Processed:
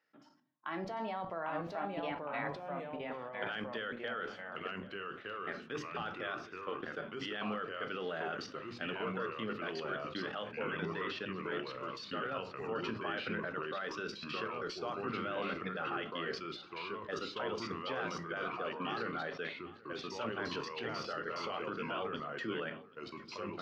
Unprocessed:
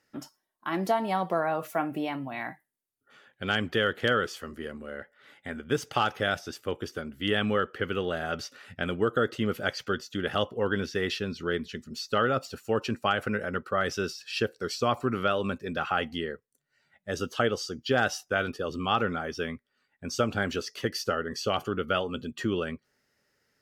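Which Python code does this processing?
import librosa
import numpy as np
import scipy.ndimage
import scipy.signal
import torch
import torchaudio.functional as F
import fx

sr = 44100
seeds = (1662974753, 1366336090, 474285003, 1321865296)

p1 = scipy.signal.sosfilt(scipy.signal.butter(4, 130.0, 'highpass', fs=sr, output='sos'), x)
p2 = fx.low_shelf(p1, sr, hz=490.0, db=-10.5)
p3 = fx.hum_notches(p2, sr, base_hz=50, count=8)
p4 = fx.level_steps(p3, sr, step_db=20)
p5 = fx.room_shoebox(p4, sr, seeds[0], volume_m3=210.0, walls='furnished', distance_m=0.49)
p6 = fx.echo_pitch(p5, sr, ms=720, semitones=-2, count=2, db_per_echo=-3.0)
p7 = fx.air_absorb(p6, sr, metres=230.0)
p8 = p7 + fx.echo_single(p7, sr, ms=787, db=-22.5, dry=0)
p9 = fx.sustainer(p8, sr, db_per_s=99.0)
y = p9 * 10.0 ** (1.5 / 20.0)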